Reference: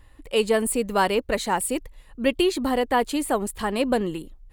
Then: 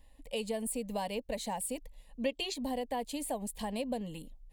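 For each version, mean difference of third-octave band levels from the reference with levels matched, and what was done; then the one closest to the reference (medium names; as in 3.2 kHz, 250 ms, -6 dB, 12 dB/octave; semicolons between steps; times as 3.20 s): 4.0 dB: time-frequency box 2.24–2.54 s, 270–7700 Hz +9 dB; static phaser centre 360 Hz, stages 6; compression 3:1, threshold -29 dBFS, peak gain reduction 15 dB; trim -5 dB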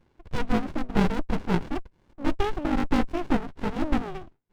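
10.0 dB: in parallel at -6 dB: decimation with a swept rate 9×, swing 160% 0.9 Hz; on the sum: mistuned SSB +51 Hz 270–2600 Hz; sliding maximum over 65 samples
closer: first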